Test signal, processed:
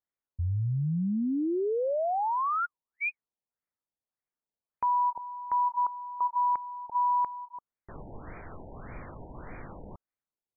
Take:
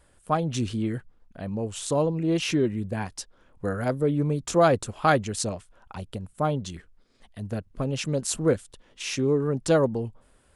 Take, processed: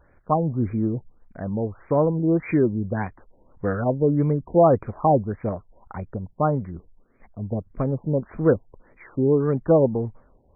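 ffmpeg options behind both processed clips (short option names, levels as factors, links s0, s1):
-af "afftfilt=real='re*lt(b*sr/1024,940*pow(2500/940,0.5+0.5*sin(2*PI*1.7*pts/sr)))':imag='im*lt(b*sr/1024,940*pow(2500/940,0.5+0.5*sin(2*PI*1.7*pts/sr)))':win_size=1024:overlap=0.75,volume=1.58"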